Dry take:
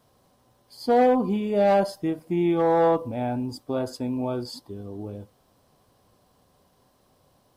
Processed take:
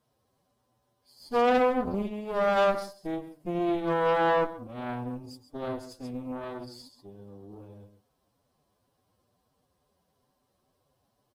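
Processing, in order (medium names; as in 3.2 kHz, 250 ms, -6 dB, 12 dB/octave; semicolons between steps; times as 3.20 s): delay 89 ms -9.5 dB; Chebyshev shaper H 4 -10 dB, 7 -24 dB, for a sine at -10.5 dBFS; time stretch by phase-locked vocoder 1.5×; trim -6 dB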